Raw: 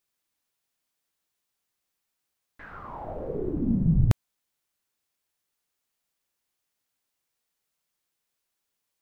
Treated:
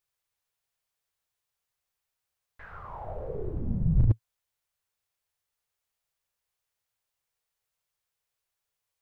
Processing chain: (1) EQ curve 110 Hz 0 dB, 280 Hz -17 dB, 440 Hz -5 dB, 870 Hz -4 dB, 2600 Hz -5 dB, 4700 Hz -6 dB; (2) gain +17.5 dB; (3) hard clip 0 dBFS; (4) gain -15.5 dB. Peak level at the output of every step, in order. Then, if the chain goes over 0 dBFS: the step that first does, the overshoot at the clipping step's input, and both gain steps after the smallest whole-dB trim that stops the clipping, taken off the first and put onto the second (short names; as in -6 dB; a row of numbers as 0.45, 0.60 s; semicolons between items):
-8.5, +9.0, 0.0, -15.5 dBFS; step 2, 9.0 dB; step 2 +8.5 dB, step 4 -6.5 dB